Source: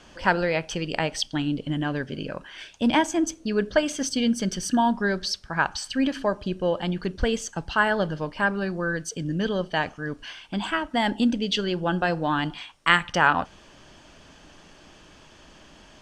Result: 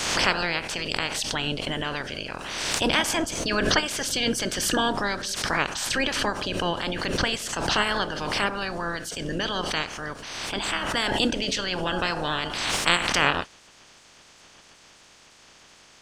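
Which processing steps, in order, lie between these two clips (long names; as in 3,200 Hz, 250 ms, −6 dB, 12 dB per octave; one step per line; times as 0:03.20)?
ceiling on every frequency bin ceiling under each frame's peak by 23 dB
background raised ahead of every attack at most 34 dB per second
level −2.5 dB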